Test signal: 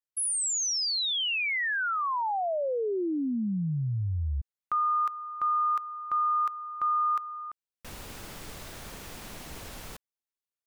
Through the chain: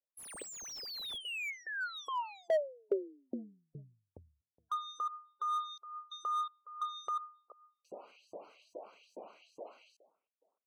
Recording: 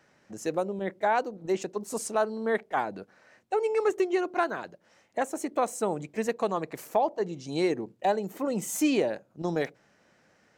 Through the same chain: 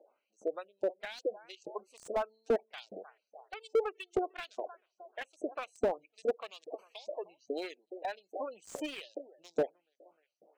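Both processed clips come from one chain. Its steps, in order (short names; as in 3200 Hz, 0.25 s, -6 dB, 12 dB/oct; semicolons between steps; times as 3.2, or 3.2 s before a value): Wiener smoothing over 25 samples; band shelf 1300 Hz -9.5 dB; on a send: dark delay 0.307 s, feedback 35%, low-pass 1400 Hz, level -21.5 dB; on the sum: LFO high-pass saw up 2.4 Hz 470–7500 Hz; in parallel at -1 dB: compressor 16:1, threshold -41 dBFS; on the sum: spectral gate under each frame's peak -20 dB strong; high shelf 2800 Hz -9.5 dB; slew limiter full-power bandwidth 32 Hz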